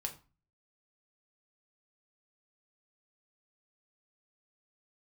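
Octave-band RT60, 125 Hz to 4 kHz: 0.60, 0.50, 0.30, 0.35, 0.30, 0.25 seconds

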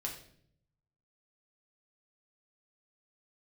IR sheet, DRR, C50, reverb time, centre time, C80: −1.0 dB, 7.5 dB, 0.60 s, 23 ms, 11.0 dB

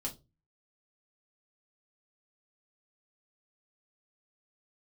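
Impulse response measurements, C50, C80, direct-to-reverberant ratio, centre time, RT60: 16.0 dB, 24.0 dB, −1.5 dB, 12 ms, 0.25 s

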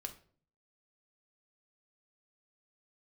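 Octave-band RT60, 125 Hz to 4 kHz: 0.80, 0.65, 0.55, 0.40, 0.35, 0.35 seconds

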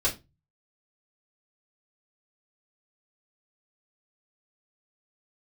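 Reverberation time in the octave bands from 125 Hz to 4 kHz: 0.60, 0.35, 0.25, 0.25, 0.20, 0.20 seconds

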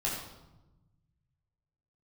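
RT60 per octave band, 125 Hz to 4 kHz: 2.3, 1.6, 1.1, 0.95, 0.70, 0.70 seconds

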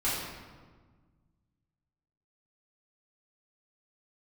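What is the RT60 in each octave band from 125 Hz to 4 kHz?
2.4, 2.1, 1.5, 1.4, 1.2, 0.95 seconds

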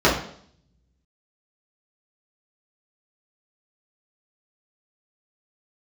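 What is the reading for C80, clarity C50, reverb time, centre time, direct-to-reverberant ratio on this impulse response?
10.0 dB, 6.5 dB, 0.60 s, 33 ms, −8.0 dB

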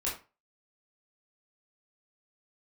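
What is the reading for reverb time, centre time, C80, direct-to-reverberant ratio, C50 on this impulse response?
0.30 s, 31 ms, 13.0 dB, −6.5 dB, 6.5 dB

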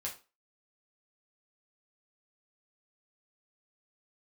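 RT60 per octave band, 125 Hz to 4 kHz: 0.25, 0.30, 0.30, 0.30, 0.30, 0.25 seconds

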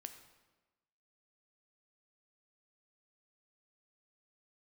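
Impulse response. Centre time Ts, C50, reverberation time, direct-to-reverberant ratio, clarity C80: 16 ms, 9.5 dB, 1.2 s, 7.0 dB, 11.0 dB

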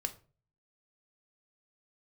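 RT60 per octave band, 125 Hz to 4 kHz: 0.70, 0.45, 0.45, 0.35, 0.30, 0.25 seconds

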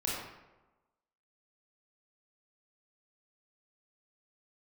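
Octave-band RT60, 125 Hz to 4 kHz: 1.0, 1.1, 1.1, 1.1, 0.85, 0.65 seconds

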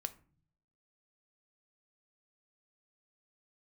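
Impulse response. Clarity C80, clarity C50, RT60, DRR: 22.0 dB, 17.5 dB, 0.45 s, 10.0 dB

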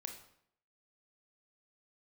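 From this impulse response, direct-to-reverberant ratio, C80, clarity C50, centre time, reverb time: 3.5 dB, 11.0 dB, 7.5 dB, 20 ms, 0.65 s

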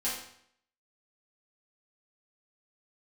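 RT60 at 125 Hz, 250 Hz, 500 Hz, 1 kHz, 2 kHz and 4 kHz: 0.70, 0.65, 0.65, 0.65, 0.65, 0.60 seconds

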